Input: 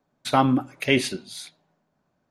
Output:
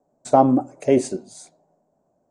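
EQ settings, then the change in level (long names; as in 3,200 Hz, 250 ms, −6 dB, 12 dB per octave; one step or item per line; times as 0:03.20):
drawn EQ curve 140 Hz 0 dB, 670 Hz +11 dB, 1,300 Hz −7 dB, 3,500 Hz −18 dB, 7,900 Hz +8 dB, 13,000 Hz −27 dB
−1.0 dB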